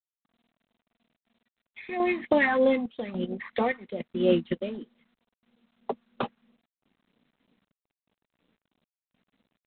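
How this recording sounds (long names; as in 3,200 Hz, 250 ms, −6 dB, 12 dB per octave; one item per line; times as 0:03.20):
sample-and-hold tremolo, depth 80%
phaser sweep stages 4, 3.1 Hz, lowest notch 490–1,900 Hz
G.726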